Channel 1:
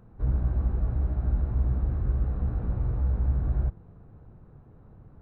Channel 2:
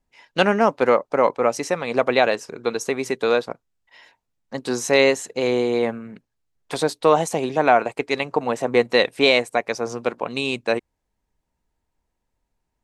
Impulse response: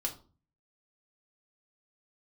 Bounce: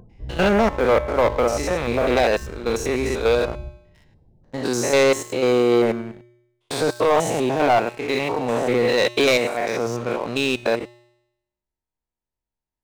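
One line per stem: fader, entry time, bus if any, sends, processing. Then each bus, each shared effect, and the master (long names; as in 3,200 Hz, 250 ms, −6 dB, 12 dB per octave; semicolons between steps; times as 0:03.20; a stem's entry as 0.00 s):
+2.0 dB, 0.00 s, send −22 dB, upward compression, threshold −44 dBFS; spectral peaks only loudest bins 32; automatic ducking −11 dB, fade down 0.30 s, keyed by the second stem
+1.5 dB, 0.00 s, no send, spectrum averaged block by block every 100 ms; leveller curve on the samples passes 3; tuned comb filter 120 Hz, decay 0.89 s, harmonics odd, mix 60%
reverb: on, RT60 0.40 s, pre-delay 3 ms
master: no processing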